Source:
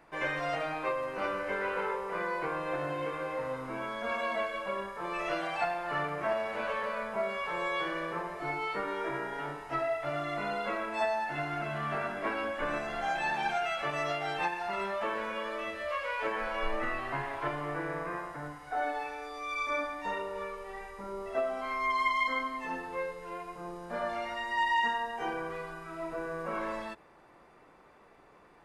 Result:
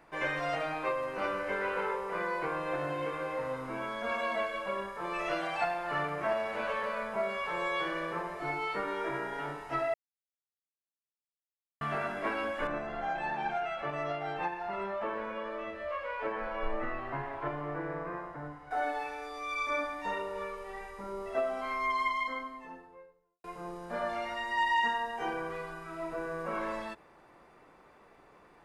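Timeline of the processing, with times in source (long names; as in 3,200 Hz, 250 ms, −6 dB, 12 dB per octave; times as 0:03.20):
0:09.94–0:11.81: silence
0:12.67–0:18.71: low-pass filter 1,200 Hz 6 dB per octave
0:21.65–0:23.44: fade out and dull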